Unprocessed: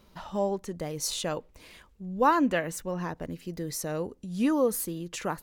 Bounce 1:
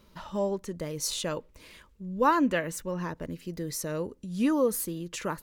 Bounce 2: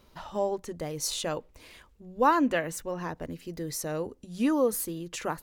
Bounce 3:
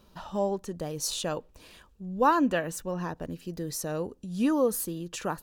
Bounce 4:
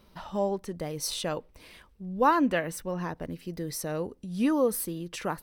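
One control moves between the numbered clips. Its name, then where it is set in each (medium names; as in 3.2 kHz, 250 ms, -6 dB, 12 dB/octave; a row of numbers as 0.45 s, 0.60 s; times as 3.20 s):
band-stop, frequency: 750 Hz, 190 Hz, 2.1 kHz, 6.9 kHz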